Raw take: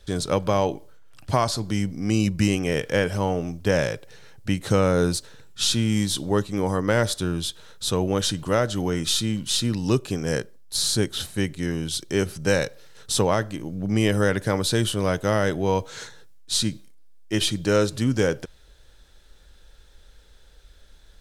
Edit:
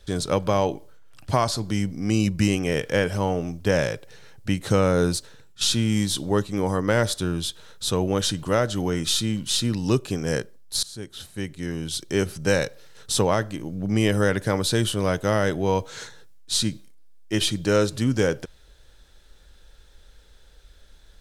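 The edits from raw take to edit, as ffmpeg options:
-filter_complex "[0:a]asplit=3[a][b][c];[a]atrim=end=5.61,asetpts=PTS-STARTPTS,afade=t=out:st=5.09:d=0.52:c=qsin:silence=0.398107[d];[b]atrim=start=5.61:end=10.83,asetpts=PTS-STARTPTS,afade=t=in:d=0.004:c=hsin:silence=0.398107,afade=t=out:st=5.216:d=0.004:c=hsin:silence=0.0891251[e];[c]atrim=start=10.83,asetpts=PTS-STARTPTS,afade=t=in:d=1.31:silence=0.0891251[f];[d][e][f]concat=n=3:v=0:a=1"

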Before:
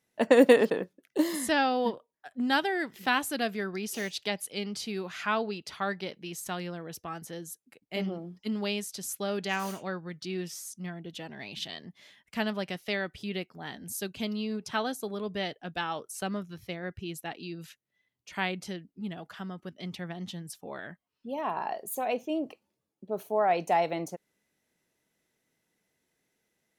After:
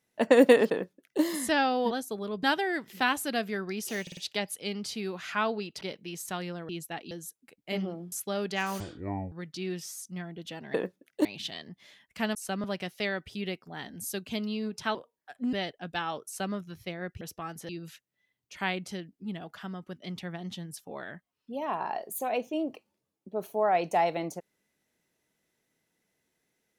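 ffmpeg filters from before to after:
-filter_complex "[0:a]asplit=20[a][b][c][d][e][f][g][h][i][j][k][l][m][n][o][p][q][r][s][t];[a]atrim=end=1.912[u];[b]atrim=start=14.828:end=15.352[v];[c]atrim=start=2.488:end=4.132[w];[d]atrim=start=4.078:end=4.132[x];[e]atrim=start=4.078:end=4.132[y];[f]atrim=start=4.078:end=5.722[z];[g]atrim=start=5.988:end=6.872[aa];[h]atrim=start=17.028:end=17.452[ab];[i]atrim=start=7.348:end=8.362[ac];[j]atrim=start=9.048:end=9.734[ad];[k]atrim=start=9.73:end=10,asetpts=PTS-STARTPTS,asetrate=22932,aresample=44100,atrim=end_sample=22898,asetpts=PTS-STARTPTS[ae];[l]atrim=start=9.996:end=11.422[af];[m]atrim=start=0.708:end=1.222[ag];[n]atrim=start=11.418:end=12.522[ah];[o]atrim=start=16.078:end=16.372[ai];[p]atrim=start=12.518:end=14.832[aj];[q]atrim=start=1.908:end=2.492[ak];[r]atrim=start=15.348:end=17.032[al];[s]atrim=start=6.868:end=7.352[am];[t]atrim=start=17.448[an];[u][v]acrossfade=d=0.004:c1=hsin:c2=hsin[ao];[ao][w]acrossfade=d=0.004:c1=hsin:c2=hsin[ap];[ap][x]acrossfade=d=0.004:c1=hsin:c2=hsin[aq];[aq][y]acrossfade=d=0.004:c1=hsin:c2=hsin[ar];[ar][z]acrossfade=d=0.004:c1=hsin:c2=hsin[as];[as][aa]acrossfade=d=0.004:c1=hsin:c2=hsin[at];[at][ab]acrossfade=d=0.004:c1=hsin:c2=hsin[au];[au][ac]acrossfade=d=0.004:c1=hsin:c2=hsin[av];[av][ad]acrossfade=d=0.004:c1=hsin:c2=hsin[aw];[aw][ae]acrossfade=d=0.004:c1=hsin:c2=hsin[ax];[ax][af]acrossfade=d=0.004:c1=hsin:c2=hsin[ay];[ay][ag]acrossfade=d=0.004:c1=hsin:c2=hsin[az];[az][ah]acrossfade=d=0.004:c1=hsin:c2=hsin[ba];[ba][ai]acrossfade=d=0.004:c1=hsin:c2=hsin[bb];[bb][aj]acrossfade=d=0.004:c1=hsin:c2=hsin[bc];[bc][ak]acrossfade=d=0.004:c1=hsin:c2=hsin[bd];[bd][al]acrossfade=d=0.004:c1=hsin:c2=hsin[be];[be][am]acrossfade=d=0.004:c1=hsin:c2=hsin[bf];[bf][an]acrossfade=d=0.004:c1=hsin:c2=hsin"

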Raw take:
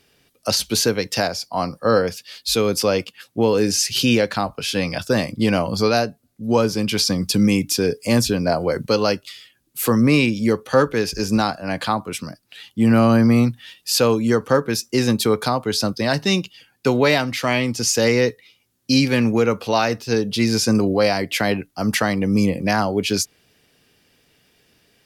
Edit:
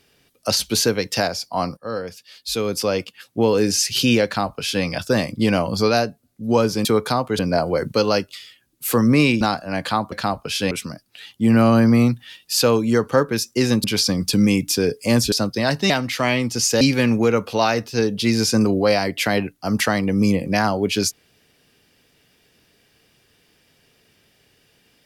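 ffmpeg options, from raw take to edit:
-filter_complex "[0:a]asplit=11[a][b][c][d][e][f][g][h][i][j][k];[a]atrim=end=1.77,asetpts=PTS-STARTPTS,afade=t=out:st=1.766:d=0.004:c=hsin:silence=0.211349[l];[b]atrim=start=1.77:end=6.852,asetpts=PTS-STARTPTS,afade=t=in:d=1.62:silence=0.211349[m];[c]atrim=start=15.208:end=15.752[n];[d]atrim=start=8.328:end=10.352[o];[e]atrim=start=11.368:end=12.082[p];[f]atrim=start=4.248:end=4.842[q];[g]atrim=start=12.078:end=15.212[r];[h]atrim=start=6.848:end=8.332[s];[i]atrim=start=15.748:end=16.332[t];[j]atrim=start=17.138:end=18.052[u];[k]atrim=start=18.948[v];[l][m]concat=n=2:v=0:a=1[w];[w][n]acrossfade=d=0.004:c1=hsin:c2=hsin[x];[x][o]acrossfade=d=0.004:c1=hsin:c2=hsin[y];[y][p]acrossfade=d=0.004:c1=hsin:c2=hsin[z];[z][q]acrossfade=d=0.004:c1=hsin:c2=hsin[aa];[aa][r]acrossfade=d=0.004:c1=hsin:c2=hsin[ab];[ab][s]acrossfade=d=0.004:c1=hsin:c2=hsin[ac];[ac][t]acrossfade=d=0.004:c1=hsin:c2=hsin[ad];[ad][u]acrossfade=d=0.004:c1=hsin:c2=hsin[ae];[ae][v]acrossfade=d=0.004:c1=hsin:c2=hsin"

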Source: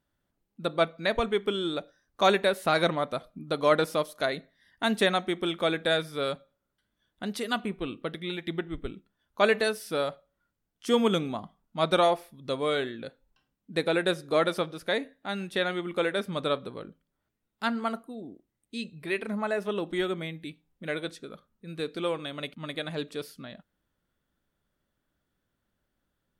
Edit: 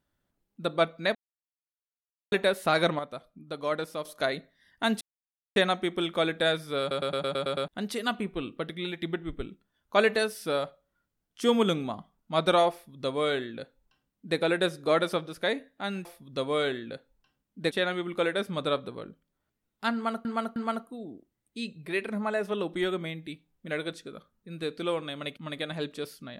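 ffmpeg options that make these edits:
-filter_complex "[0:a]asplit=18[a][b][c][d][e][f][g][h][i][j][k][l][m][n][o][p][q][r];[a]atrim=end=1.15,asetpts=PTS-STARTPTS,afade=t=out:st=1.146:d=0.004:c=hsin[s];[b]atrim=start=1.15:end=2.32,asetpts=PTS-STARTPTS,volume=0[t];[c]atrim=start=2.32:end=2.992,asetpts=PTS-STARTPTS,afade=t=in:d=0.004:c=hsin[u];[d]atrim=start=2.988:end=4.052,asetpts=PTS-STARTPTS,volume=-7.5dB[v];[e]atrim=start=4.048:end=5.01,asetpts=PTS-STARTPTS,afade=t=out:st=0.958:d=0.004:c=hsin,apad=pad_dur=0.55[w];[f]atrim=start=5.01:end=6.362,asetpts=PTS-STARTPTS,afade=t=in:d=0.004:c=hsin[x];[g]atrim=start=6.248:end=6.362[y];[h]atrim=start=6.248:end=6.362[z];[i]atrim=start=6.248:end=6.362[aa];[j]atrim=start=6.248:end=6.362[ab];[k]atrim=start=6.248:end=6.362[ac];[l]atrim=start=6.248:end=6.362[ad];[m]atrim=start=6.248:end=6.362[ae];[n]atrim=start=7.128:end=15.502[af];[o]atrim=start=12.168:end=13.832[ag];[p]atrim=start=15.498:end=18.042[ah];[q]atrim=start=17.728:end=18.042[ai];[r]atrim=start=17.728[aj];[s][t][u]concat=n=3:v=0:a=1[ak];[ak][v]acrossfade=d=0.004:c1=hsin:c2=hsin[al];[w][x]concat=n=2:v=0:a=1[am];[al][am]acrossfade=d=0.004:c1=hsin:c2=hsin[an];[an][y]acrossfade=d=0.004:c1=hsin:c2=hsin[ao];[ao][z]acrossfade=d=0.004:c1=hsin:c2=hsin[ap];[ap][aa]acrossfade=d=0.004:c1=hsin:c2=hsin[aq];[aq][ab]acrossfade=d=0.004:c1=hsin:c2=hsin[ar];[ar][ac]acrossfade=d=0.004:c1=hsin:c2=hsin[as];[as][ad]acrossfade=d=0.004:c1=hsin:c2=hsin[at];[at][ae]acrossfade=d=0.004:c1=hsin:c2=hsin[au];[au][af]acrossfade=d=0.004:c1=hsin:c2=hsin[av];[av][ag]acrossfade=d=0.004:c1=hsin:c2=hsin[aw];[aw][ah]acrossfade=d=0.004:c1=hsin:c2=hsin[ax];[ax][ai]acrossfade=d=0.004:c1=hsin:c2=hsin[ay];[ay][aj]acrossfade=d=0.004:c1=hsin:c2=hsin"

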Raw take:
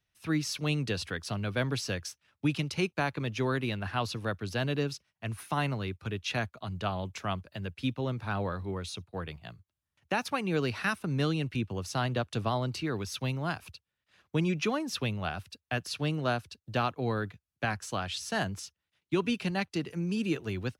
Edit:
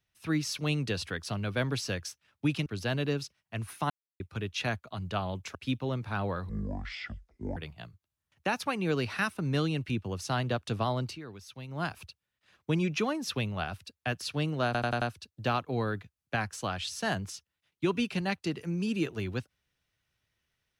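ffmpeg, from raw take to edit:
-filter_complex "[0:a]asplit=13[a][b][c][d][e][f][g][h][i][j][k][l][m];[a]atrim=end=2.662[n];[b]atrim=start=4.358:end=5.6,asetpts=PTS-STARTPTS,afade=t=out:st=1.238:d=0.004:c=hsin[o];[c]atrim=start=5.6:end=5.9,asetpts=PTS-STARTPTS,volume=0[p];[d]atrim=start=5.9:end=7.252,asetpts=PTS-STARTPTS,afade=t=in:d=0.004:c=hsin[q];[e]atrim=start=7.708:end=8.654[r];[f]atrim=start=8.65:end=9.22,asetpts=PTS-STARTPTS,asetrate=23373,aresample=44100,atrim=end_sample=47428,asetpts=PTS-STARTPTS[s];[g]atrim=start=9.216:end=12.85,asetpts=PTS-STARTPTS,afade=t=out:st=3.484:d=0.15:silence=0.266073[t];[h]atrim=start=12.85:end=13.33,asetpts=PTS-STARTPTS,volume=-11.5dB[u];[i]atrim=start=13.33:end=16.402,asetpts=PTS-STARTPTS,afade=t=in:d=0.15:silence=0.266073[v];[j]atrim=start=16.308:end=16.402[w];[k]atrim=start=16.308:end=16.402[x];[l]atrim=start=16.308:end=16.402[y];[m]atrim=start=16.308[z];[o][p][q]concat=n=3:v=0:a=1[aa];[n][aa]acrossfade=d=0.004:c1=hsin:c2=hsin[ab];[ab][r]acrossfade=d=0.004:c1=hsin:c2=hsin[ac];[ac][s]acrossfade=d=0.004:c1=hsin:c2=hsin[ad];[t][u][v]concat=n=3:v=0:a=1[ae];[ad][ae]acrossfade=d=0.004:c1=hsin:c2=hsin[af];[af][w]acrossfade=d=0.004:c1=hsin:c2=hsin[ag];[ag][x]acrossfade=d=0.004:c1=hsin:c2=hsin[ah];[ah][y]acrossfade=d=0.004:c1=hsin:c2=hsin[ai];[ai][z]acrossfade=d=0.004:c1=hsin:c2=hsin"

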